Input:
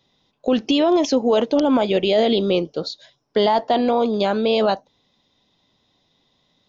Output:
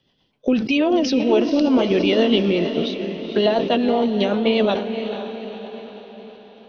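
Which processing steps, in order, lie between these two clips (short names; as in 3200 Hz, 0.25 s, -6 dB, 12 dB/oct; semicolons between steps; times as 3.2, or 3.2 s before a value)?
rotary speaker horn 8 Hz; diffused feedback echo 0.491 s, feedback 52%, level -8.5 dB; formant shift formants -2 st; sustainer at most 74 dB/s; gain +1.5 dB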